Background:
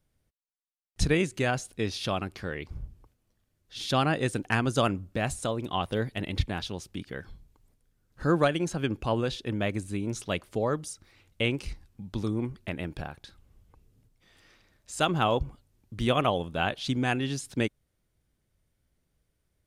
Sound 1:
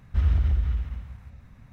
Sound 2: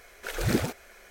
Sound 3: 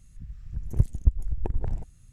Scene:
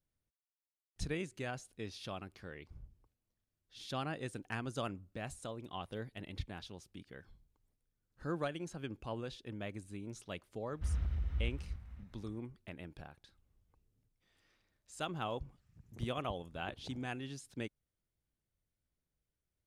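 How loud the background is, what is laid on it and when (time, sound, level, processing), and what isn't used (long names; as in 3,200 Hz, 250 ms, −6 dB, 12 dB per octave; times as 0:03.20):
background −14 dB
0:10.67: mix in 1 −13.5 dB + delay that plays each chunk backwards 273 ms, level −5 dB
0:15.23: mix in 3 −15 dB + high-pass filter 140 Hz
not used: 2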